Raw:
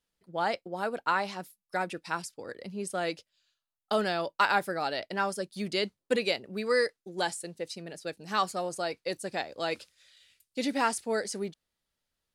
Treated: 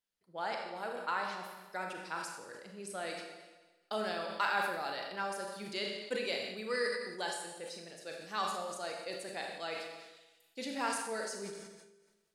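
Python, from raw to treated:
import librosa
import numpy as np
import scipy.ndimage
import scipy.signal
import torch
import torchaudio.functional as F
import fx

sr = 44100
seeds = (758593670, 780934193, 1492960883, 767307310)

y = fx.low_shelf(x, sr, hz=330.0, db=-8.0)
y = fx.rev_schroeder(y, sr, rt60_s=1.2, comb_ms=29, drr_db=2.5)
y = fx.sustainer(y, sr, db_per_s=47.0)
y = y * 10.0 ** (-8.0 / 20.0)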